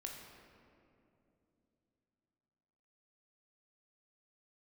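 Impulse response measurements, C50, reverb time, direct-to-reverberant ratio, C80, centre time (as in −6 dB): 3.0 dB, 2.9 s, 0.0 dB, 4.5 dB, 75 ms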